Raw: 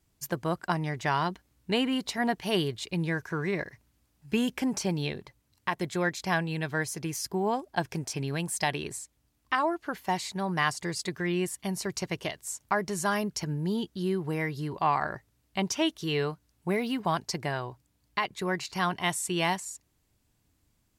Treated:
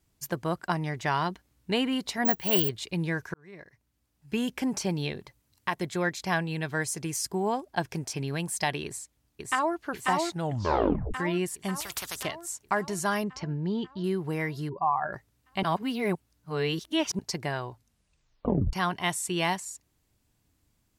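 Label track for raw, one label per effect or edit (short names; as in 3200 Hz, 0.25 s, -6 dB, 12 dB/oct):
2.250000	2.690000	careless resampling rate divided by 2×, down none, up zero stuff
3.340000	4.680000	fade in
5.190000	5.790000	high shelf 6000 Hz +4.5 dB
6.730000	7.530000	bell 8100 Hz +7 dB 0.56 oct
8.850000	9.780000	echo throw 0.54 s, feedback 65%, level -2 dB
10.290000	10.290000	tape stop 0.85 s
11.800000	12.230000	spectral compressor 10:1
13.240000	14.040000	air absorption 160 m
14.690000	15.130000	spectral contrast raised exponent 2.2
15.630000	17.190000	reverse
17.690000	17.690000	tape stop 1.04 s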